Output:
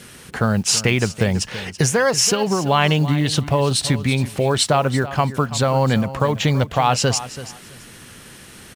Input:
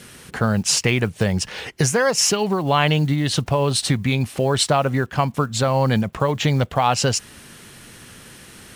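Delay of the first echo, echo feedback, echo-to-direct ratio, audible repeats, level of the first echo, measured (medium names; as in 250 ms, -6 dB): 331 ms, 20%, -14.5 dB, 2, -14.5 dB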